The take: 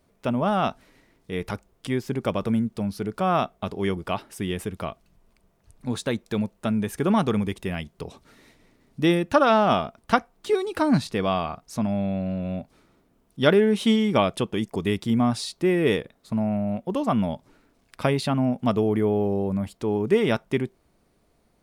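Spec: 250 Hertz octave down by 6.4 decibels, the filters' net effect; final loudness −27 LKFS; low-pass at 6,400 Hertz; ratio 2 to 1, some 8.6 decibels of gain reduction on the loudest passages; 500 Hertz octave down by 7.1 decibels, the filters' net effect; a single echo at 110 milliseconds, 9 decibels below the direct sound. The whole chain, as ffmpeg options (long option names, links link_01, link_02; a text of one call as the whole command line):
ffmpeg -i in.wav -af "lowpass=6400,equalizer=frequency=250:width_type=o:gain=-6.5,equalizer=frequency=500:width_type=o:gain=-7.5,acompressor=threshold=-33dB:ratio=2,aecho=1:1:110:0.355,volume=7.5dB" out.wav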